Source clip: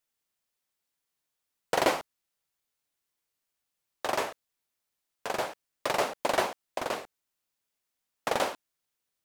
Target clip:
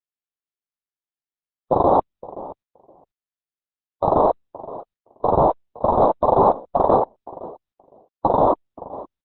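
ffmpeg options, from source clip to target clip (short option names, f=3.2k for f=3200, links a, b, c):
-filter_complex "[0:a]afftfilt=real='re*gte(hypot(re,im),0.00794)':imag='im*gte(hypot(re,im),0.00794)':win_size=1024:overlap=0.75,areverse,acompressor=threshold=-36dB:ratio=20,areverse,asplit=2[a][b];[b]adelay=518,lowpass=f=820:p=1,volume=-20dB,asplit=2[c][d];[d]adelay=518,lowpass=f=820:p=1,volume=0.17[e];[a][c][e]amix=inputs=3:normalize=0,aexciter=amount=1.3:drive=9.7:freq=2.7k,acrusher=samples=9:mix=1:aa=0.000001:lfo=1:lforange=5.4:lforate=0.93,asetrate=46722,aresample=44100,atempo=0.943874,acrusher=bits=2:mode=log:mix=0:aa=0.000001,asuperstop=centerf=2300:order=12:qfactor=0.61,aresample=8000,aresample=44100,alimiter=level_in=35.5dB:limit=-1dB:release=50:level=0:latency=1,volume=-5.5dB" -ar 48000 -c:a libopus -b:a 8k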